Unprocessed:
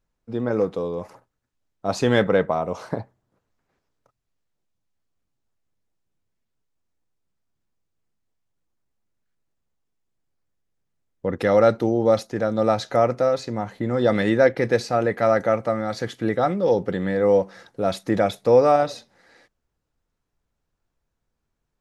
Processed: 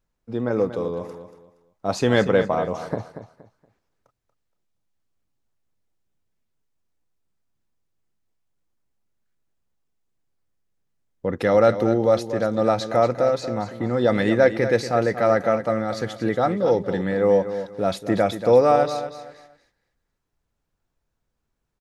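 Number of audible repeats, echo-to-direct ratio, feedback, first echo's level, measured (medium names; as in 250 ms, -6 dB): 3, -10.5 dB, 27%, -11.0 dB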